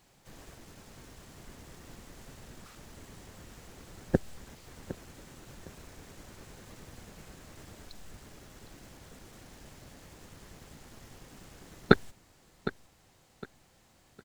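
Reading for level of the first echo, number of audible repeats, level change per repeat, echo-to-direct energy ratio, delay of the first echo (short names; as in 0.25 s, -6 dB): -14.0 dB, 2, -11.0 dB, -13.5 dB, 0.759 s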